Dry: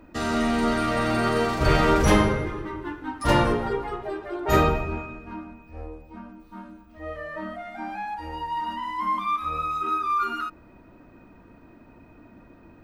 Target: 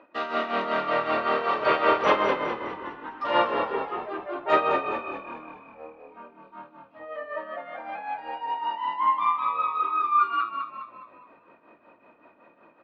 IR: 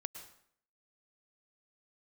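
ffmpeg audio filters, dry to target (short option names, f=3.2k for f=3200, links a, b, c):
-filter_complex "[0:a]tremolo=f=5.3:d=0.68,highpass=460,equalizer=f=560:t=q:w=4:g=7,equalizer=f=1.1k:t=q:w=4:g=7,equalizer=f=2.7k:t=q:w=4:g=3,lowpass=f=3.7k:w=0.5412,lowpass=f=3.7k:w=1.3066,asplit=6[a][b][c][d][e][f];[b]adelay=206,afreqshift=-39,volume=-6.5dB[g];[c]adelay=412,afreqshift=-78,volume=-13.2dB[h];[d]adelay=618,afreqshift=-117,volume=-20dB[i];[e]adelay=824,afreqshift=-156,volume=-26.7dB[j];[f]adelay=1030,afreqshift=-195,volume=-33.5dB[k];[a][g][h][i][j][k]amix=inputs=6:normalize=0"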